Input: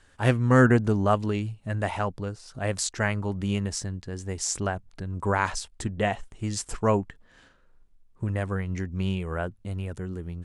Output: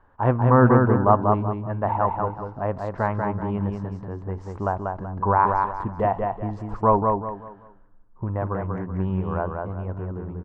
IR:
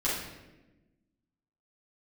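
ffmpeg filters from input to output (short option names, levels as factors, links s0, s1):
-filter_complex "[0:a]lowpass=f=980:t=q:w=3.6,aecho=1:1:190|380|570|760:0.631|0.202|0.0646|0.0207,asplit=2[s0][s1];[1:a]atrim=start_sample=2205[s2];[s1][s2]afir=irnorm=-1:irlink=0,volume=0.0299[s3];[s0][s3]amix=inputs=2:normalize=0"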